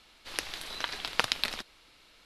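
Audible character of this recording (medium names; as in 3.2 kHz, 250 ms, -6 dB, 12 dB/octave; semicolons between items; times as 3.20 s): noise floor -60 dBFS; spectral tilt -2.0 dB/octave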